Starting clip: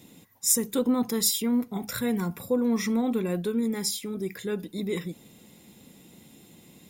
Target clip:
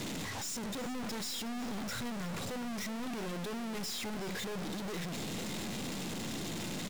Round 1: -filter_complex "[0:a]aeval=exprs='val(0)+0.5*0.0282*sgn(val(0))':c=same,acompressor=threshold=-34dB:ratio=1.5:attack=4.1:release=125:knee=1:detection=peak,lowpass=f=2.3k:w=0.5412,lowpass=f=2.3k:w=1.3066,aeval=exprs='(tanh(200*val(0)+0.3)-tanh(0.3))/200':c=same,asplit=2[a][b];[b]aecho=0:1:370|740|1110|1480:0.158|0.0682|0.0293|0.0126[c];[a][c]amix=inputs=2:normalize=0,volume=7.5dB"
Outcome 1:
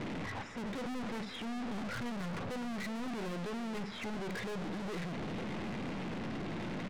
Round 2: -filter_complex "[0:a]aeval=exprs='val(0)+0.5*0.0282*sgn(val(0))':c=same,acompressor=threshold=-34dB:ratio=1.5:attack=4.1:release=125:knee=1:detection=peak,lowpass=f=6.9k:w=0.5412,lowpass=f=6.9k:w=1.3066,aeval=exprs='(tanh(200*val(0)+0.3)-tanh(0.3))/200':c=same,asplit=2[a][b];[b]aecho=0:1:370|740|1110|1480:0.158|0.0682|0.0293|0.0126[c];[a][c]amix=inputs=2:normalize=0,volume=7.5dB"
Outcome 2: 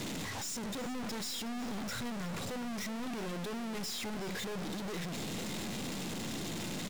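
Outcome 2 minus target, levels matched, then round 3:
compressor: peak gain reduction +2.5 dB
-filter_complex "[0:a]aeval=exprs='val(0)+0.5*0.0282*sgn(val(0))':c=same,acompressor=threshold=-26dB:ratio=1.5:attack=4.1:release=125:knee=1:detection=peak,lowpass=f=6.9k:w=0.5412,lowpass=f=6.9k:w=1.3066,aeval=exprs='(tanh(200*val(0)+0.3)-tanh(0.3))/200':c=same,asplit=2[a][b];[b]aecho=0:1:370|740|1110|1480:0.158|0.0682|0.0293|0.0126[c];[a][c]amix=inputs=2:normalize=0,volume=7.5dB"

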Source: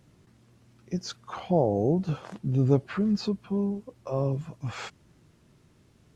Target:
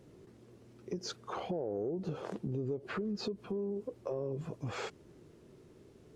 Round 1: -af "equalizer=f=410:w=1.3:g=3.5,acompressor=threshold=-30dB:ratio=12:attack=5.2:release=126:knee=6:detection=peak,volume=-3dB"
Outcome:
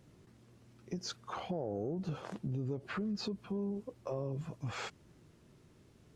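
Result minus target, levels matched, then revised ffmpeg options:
500 Hz band -3.0 dB
-af "equalizer=f=410:w=1.3:g=14,acompressor=threshold=-30dB:ratio=12:attack=5.2:release=126:knee=6:detection=peak,volume=-3dB"

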